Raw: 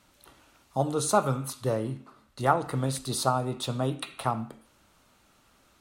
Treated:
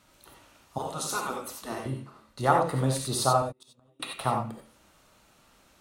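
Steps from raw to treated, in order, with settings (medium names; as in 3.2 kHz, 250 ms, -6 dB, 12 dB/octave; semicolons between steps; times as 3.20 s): 0.78–1.86 s: spectral gate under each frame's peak -10 dB weak; 3.41–4.00 s: inverted gate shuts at -24 dBFS, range -38 dB; gated-style reverb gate 110 ms rising, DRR 1.5 dB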